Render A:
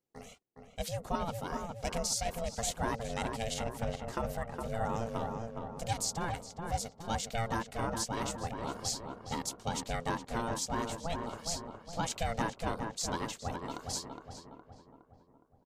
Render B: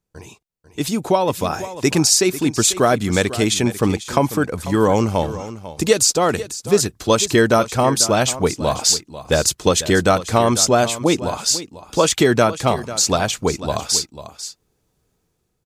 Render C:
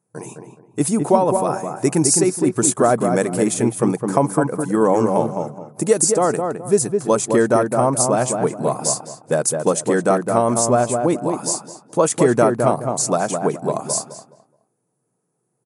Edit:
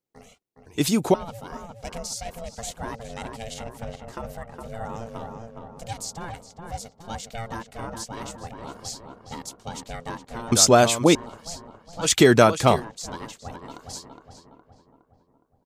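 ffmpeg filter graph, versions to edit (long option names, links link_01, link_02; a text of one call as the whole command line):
ffmpeg -i take0.wav -i take1.wav -filter_complex "[1:a]asplit=3[link_01][link_02][link_03];[0:a]asplit=4[link_04][link_05][link_06][link_07];[link_04]atrim=end=0.662[link_08];[link_01]atrim=start=0.658:end=1.142[link_09];[link_05]atrim=start=1.138:end=10.522[link_10];[link_02]atrim=start=10.518:end=11.152[link_11];[link_06]atrim=start=11.148:end=12.11[link_12];[link_03]atrim=start=12.01:end=12.85[link_13];[link_07]atrim=start=12.75[link_14];[link_08][link_09]acrossfade=duration=0.004:curve1=hsin:curve2=hsin[link_15];[link_15][link_10]acrossfade=duration=0.004:curve1=hsin:curve2=hsin[link_16];[link_16][link_11]acrossfade=duration=0.004:curve1=hsin:curve2=hsin[link_17];[link_17][link_12]acrossfade=duration=0.004:curve1=hsin:curve2=hsin[link_18];[link_18][link_13]acrossfade=duration=0.1:curve1=tri:curve2=tri[link_19];[link_19][link_14]acrossfade=duration=0.1:curve1=tri:curve2=tri" out.wav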